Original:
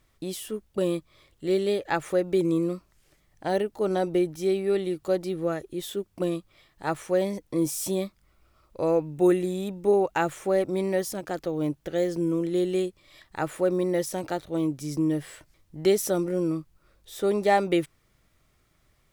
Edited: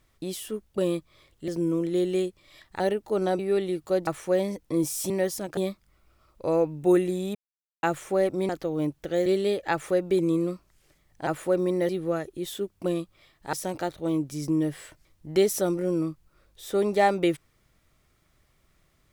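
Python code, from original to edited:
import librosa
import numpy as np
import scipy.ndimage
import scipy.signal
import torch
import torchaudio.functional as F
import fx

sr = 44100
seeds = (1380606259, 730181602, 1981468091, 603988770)

y = fx.edit(x, sr, fx.swap(start_s=1.48, length_s=2.01, other_s=12.08, other_length_s=1.32),
    fx.cut(start_s=4.08, length_s=0.49),
    fx.move(start_s=5.25, length_s=1.64, to_s=14.02),
    fx.silence(start_s=9.7, length_s=0.48),
    fx.move(start_s=10.84, length_s=0.47, to_s=7.92), tone=tone)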